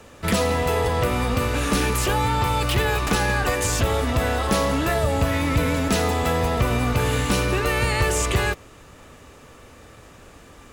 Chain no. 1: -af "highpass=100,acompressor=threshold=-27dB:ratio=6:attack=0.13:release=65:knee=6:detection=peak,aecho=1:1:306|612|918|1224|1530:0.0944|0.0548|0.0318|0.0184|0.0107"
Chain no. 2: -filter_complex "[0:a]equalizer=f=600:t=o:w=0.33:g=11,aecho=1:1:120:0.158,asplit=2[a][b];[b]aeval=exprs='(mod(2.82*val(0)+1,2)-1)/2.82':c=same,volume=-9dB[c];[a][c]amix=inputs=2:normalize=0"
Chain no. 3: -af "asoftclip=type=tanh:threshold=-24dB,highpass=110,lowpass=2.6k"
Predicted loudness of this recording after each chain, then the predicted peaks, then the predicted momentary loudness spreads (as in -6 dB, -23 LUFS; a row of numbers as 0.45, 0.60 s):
-32.0, -17.5, -29.0 LUFS; -23.0, -6.5, -17.5 dBFS; 15, 2, 20 LU